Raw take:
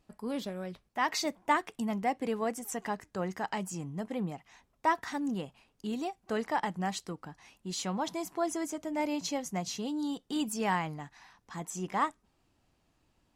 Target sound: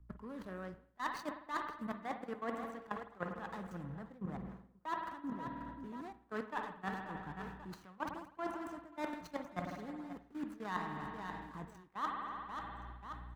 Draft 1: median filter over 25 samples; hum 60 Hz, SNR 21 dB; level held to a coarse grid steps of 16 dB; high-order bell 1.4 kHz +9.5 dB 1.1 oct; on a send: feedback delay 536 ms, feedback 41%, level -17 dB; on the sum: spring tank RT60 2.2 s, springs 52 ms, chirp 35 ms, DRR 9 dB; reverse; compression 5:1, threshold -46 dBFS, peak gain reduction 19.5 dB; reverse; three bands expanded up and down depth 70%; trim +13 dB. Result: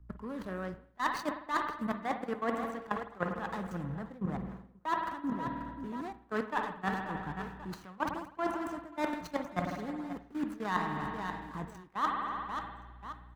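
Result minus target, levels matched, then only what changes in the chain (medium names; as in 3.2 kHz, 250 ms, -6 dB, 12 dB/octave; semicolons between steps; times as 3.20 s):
compression: peak gain reduction -7 dB
change: compression 5:1, threshold -55 dBFS, peak gain reduction 27 dB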